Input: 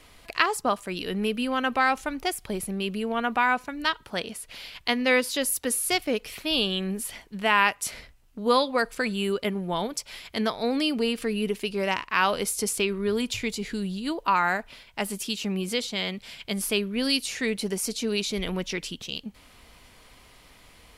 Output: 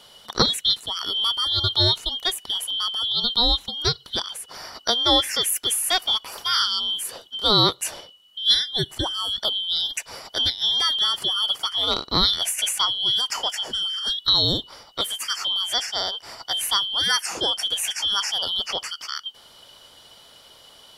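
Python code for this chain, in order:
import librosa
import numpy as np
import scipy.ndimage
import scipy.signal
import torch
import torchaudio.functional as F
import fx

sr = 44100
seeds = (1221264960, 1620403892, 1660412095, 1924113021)

y = fx.band_shuffle(x, sr, order='2413')
y = fx.dynamic_eq(y, sr, hz=4600.0, q=1.1, threshold_db=-35.0, ratio=4.0, max_db=-7, at=(8.54, 9.38))
y = y * 10.0 ** (3.5 / 20.0)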